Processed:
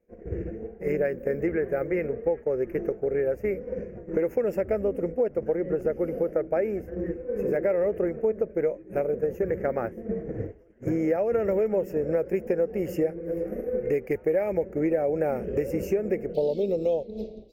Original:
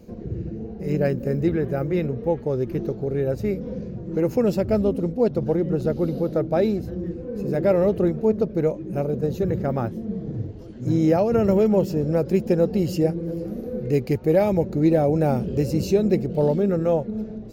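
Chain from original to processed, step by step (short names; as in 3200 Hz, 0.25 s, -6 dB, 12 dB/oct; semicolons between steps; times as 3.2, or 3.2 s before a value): expander -23 dBFS; graphic EQ 125/250/500/1000/2000/4000/8000 Hz -12/-5/+7/-6/+11/+10/-6 dB; compressor 4:1, threshold -34 dBFS, peak gain reduction 19.5 dB; Butterworth band-stop 3900 Hz, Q 0.68, from 16.33 s 1600 Hz; gain +8.5 dB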